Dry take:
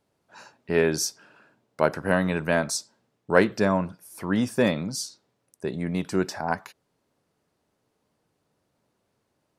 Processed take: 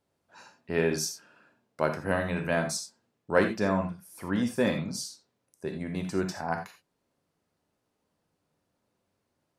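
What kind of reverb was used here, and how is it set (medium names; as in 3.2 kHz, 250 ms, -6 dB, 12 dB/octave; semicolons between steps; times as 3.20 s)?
gated-style reverb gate 110 ms flat, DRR 4.5 dB; trim -5.5 dB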